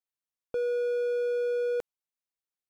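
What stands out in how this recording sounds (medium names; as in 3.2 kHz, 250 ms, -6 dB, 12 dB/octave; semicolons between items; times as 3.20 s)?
noise floor -94 dBFS; spectral tilt -3.0 dB/octave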